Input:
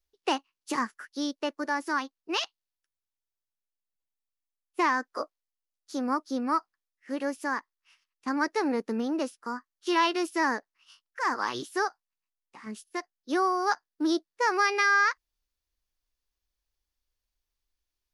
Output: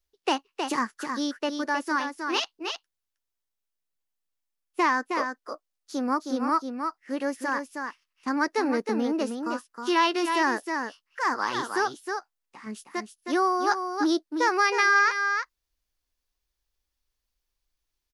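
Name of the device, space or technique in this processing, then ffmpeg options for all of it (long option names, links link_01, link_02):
ducked delay: -filter_complex "[0:a]asettb=1/sr,asplit=3[link_01][link_02][link_03];[link_01]atrim=end=1.984[link_04];[link_02]atrim=start=1.98:end=2.4,asetpts=PTS-STARTPTS,afade=type=in:duration=0.004:curve=qsin,afade=type=out:start_time=0.416:duration=0.004:curve=qsin,asplit=2[link_05][link_06];[link_06]adelay=29,volume=-7.5dB[link_07];[link_05][link_07]amix=inputs=2:normalize=0,atrim=end_sample=18522[link_08];[link_03]atrim=start=2.396[link_09];[link_04][link_08]acrossfade=duration=0.004:curve1=hsin:curve2=qsin[link_10];[link_10][link_09]acrossfade=duration=0.004:curve1=qsin:curve2=hsin,asplit=3[link_11][link_12][link_13];[link_12]adelay=315,volume=-5.5dB[link_14];[link_13]apad=whole_len=813444[link_15];[link_14][link_15]sidechaincompress=threshold=-28dB:ratio=8:attack=44:release=207[link_16];[link_11][link_16]amix=inputs=2:normalize=0,volume=2dB"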